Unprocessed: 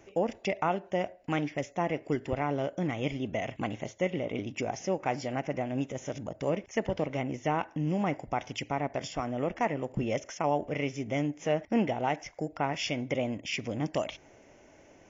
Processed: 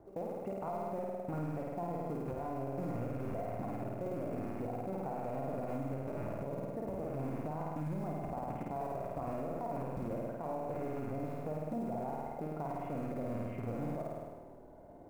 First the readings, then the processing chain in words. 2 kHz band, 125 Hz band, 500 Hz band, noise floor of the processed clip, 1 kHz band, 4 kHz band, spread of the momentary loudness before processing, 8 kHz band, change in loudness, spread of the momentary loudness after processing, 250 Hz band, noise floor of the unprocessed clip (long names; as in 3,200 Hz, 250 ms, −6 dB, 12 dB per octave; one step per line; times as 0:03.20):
−17.5 dB, −4.5 dB, −7.0 dB, −52 dBFS, −7.5 dB, below −25 dB, 5 LU, can't be measured, −7.5 dB, 2 LU, −7.0 dB, −58 dBFS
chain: loose part that buzzes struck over −40 dBFS, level −19 dBFS
low-pass filter 1,100 Hz 24 dB per octave
low-shelf EQ 150 Hz +2 dB
downward compressor 10 to 1, threshold −32 dBFS, peak gain reduction 11 dB
tuned comb filter 700 Hz, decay 0.18 s, harmonics all, mix 70%
floating-point word with a short mantissa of 4 bits
flutter between parallel walls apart 8.9 metres, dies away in 1.3 s
brickwall limiter −38 dBFS, peak gain reduction 9 dB
level +8 dB